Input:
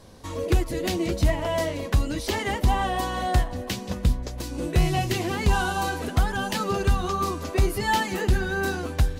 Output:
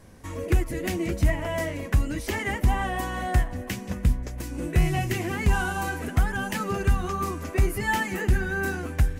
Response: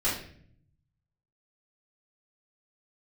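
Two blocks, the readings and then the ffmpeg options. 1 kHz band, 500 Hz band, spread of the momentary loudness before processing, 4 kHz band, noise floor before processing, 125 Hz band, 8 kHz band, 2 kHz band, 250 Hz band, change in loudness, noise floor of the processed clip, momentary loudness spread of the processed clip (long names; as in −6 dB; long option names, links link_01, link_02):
−4.0 dB, −3.5 dB, 4 LU, −6.5 dB, −36 dBFS, 0.0 dB, −2.5 dB, +0.5 dB, −1.0 dB, −1.0 dB, −38 dBFS, 5 LU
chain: -af "equalizer=frequency=500:width_type=o:width=1:gain=-4,equalizer=frequency=1000:width_type=o:width=1:gain=-4,equalizer=frequency=2000:width_type=o:width=1:gain=5,equalizer=frequency=4000:width_type=o:width=1:gain=-11"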